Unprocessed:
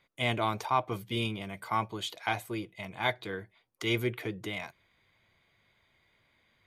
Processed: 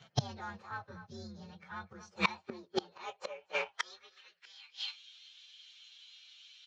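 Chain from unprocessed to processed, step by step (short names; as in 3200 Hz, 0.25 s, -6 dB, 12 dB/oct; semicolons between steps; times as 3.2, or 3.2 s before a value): inharmonic rescaling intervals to 128%; outdoor echo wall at 42 m, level -14 dB; in parallel at -2.5 dB: compressor 10:1, threshold -41 dBFS, peak gain reduction 17 dB; on the sum: sample leveller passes 1; flipped gate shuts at -30 dBFS, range -32 dB; LPF 5700 Hz 24 dB/oct; bell 300 Hz -12.5 dB 0.5 oct; notch 3900 Hz, Q 6.7; formant shift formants -2 st; high-pass sweep 140 Hz -> 3300 Hz, 2–4.92; gain +16 dB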